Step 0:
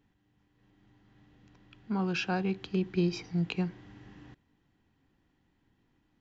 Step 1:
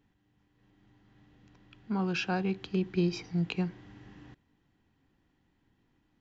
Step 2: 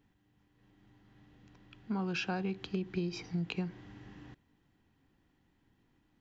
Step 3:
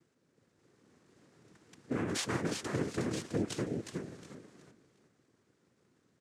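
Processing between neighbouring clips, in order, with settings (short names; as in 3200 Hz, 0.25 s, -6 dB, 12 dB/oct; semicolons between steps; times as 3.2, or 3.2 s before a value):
nothing audible
compressor 6:1, threshold -31 dBFS, peak gain reduction 8 dB
feedback echo 0.363 s, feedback 27%, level -5.5 dB; noise vocoder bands 3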